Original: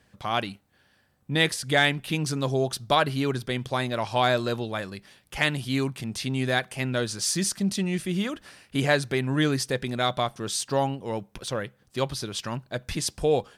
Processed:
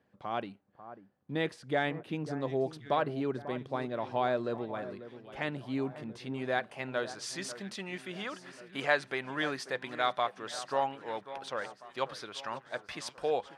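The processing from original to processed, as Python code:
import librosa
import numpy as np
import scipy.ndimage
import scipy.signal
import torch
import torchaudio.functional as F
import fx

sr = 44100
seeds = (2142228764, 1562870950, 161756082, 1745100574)

y = fx.filter_sweep_bandpass(x, sr, from_hz=350.0, to_hz=1000.0, start_s=5.88, end_s=7.36, q=0.72)
y = fx.tilt_shelf(y, sr, db=-3.5, hz=640.0)
y = fx.echo_alternate(y, sr, ms=543, hz=1600.0, feedback_pct=66, wet_db=-13.0)
y = F.gain(torch.from_numpy(y), -3.5).numpy()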